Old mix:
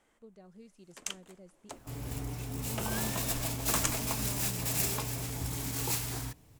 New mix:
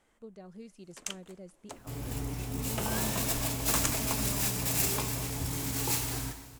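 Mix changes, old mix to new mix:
speech +6.0 dB; reverb: on, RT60 1.6 s

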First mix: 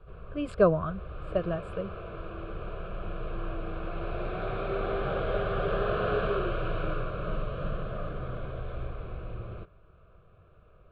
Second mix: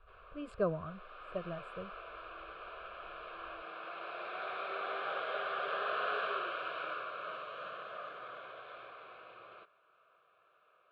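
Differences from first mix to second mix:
speech -11.0 dB; background: add HPF 940 Hz 12 dB/oct

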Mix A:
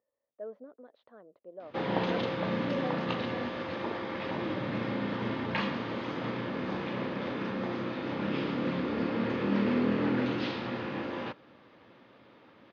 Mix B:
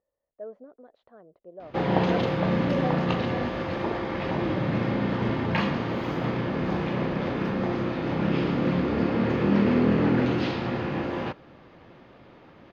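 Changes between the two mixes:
background +4.0 dB; master: remove speaker cabinet 140–9500 Hz, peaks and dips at 160 Hz -8 dB, 370 Hz -4 dB, 720 Hz -5 dB, 3600 Hz +3 dB, 7500 Hz -10 dB

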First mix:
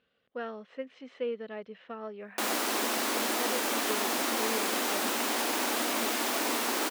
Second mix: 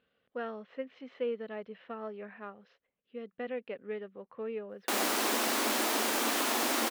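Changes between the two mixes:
speech: add air absorption 130 m; background: entry +2.50 s

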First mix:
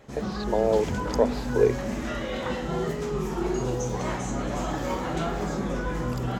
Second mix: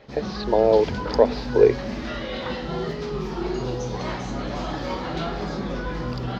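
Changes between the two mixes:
speech +5.5 dB; background: add resonant high shelf 6300 Hz -12 dB, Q 3

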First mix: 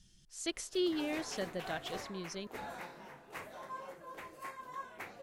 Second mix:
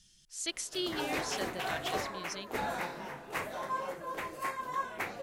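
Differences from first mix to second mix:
speech: add tilt shelf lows -5.5 dB, about 1200 Hz; background +9.5 dB

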